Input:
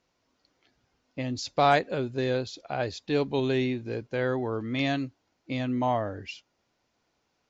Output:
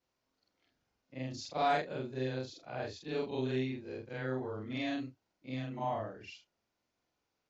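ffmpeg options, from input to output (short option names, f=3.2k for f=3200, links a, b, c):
-af "afftfilt=real='re':imag='-im':win_size=4096:overlap=0.75,volume=-5dB"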